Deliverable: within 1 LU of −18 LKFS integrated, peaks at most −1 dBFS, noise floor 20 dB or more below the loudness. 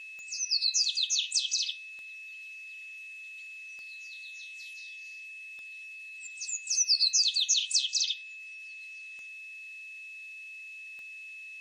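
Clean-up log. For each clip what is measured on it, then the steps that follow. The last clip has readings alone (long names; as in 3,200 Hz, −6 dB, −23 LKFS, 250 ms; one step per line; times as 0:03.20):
number of clicks 7; interfering tone 2,600 Hz; level of the tone −42 dBFS; integrated loudness −26.5 LKFS; sample peak −15.0 dBFS; target loudness −18.0 LKFS
→ click removal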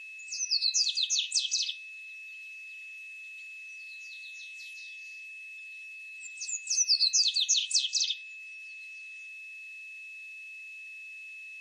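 number of clicks 0; interfering tone 2,600 Hz; level of the tone −42 dBFS
→ notch filter 2,600 Hz, Q 30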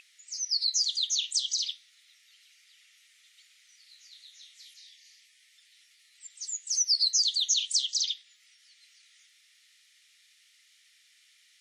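interfering tone none found; integrated loudness −26.5 LKFS; sample peak −15.0 dBFS; target loudness −18.0 LKFS
→ level +8.5 dB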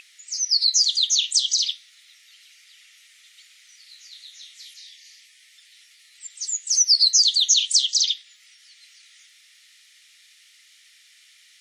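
integrated loudness −18.0 LKFS; sample peak −6.5 dBFS; background noise floor −55 dBFS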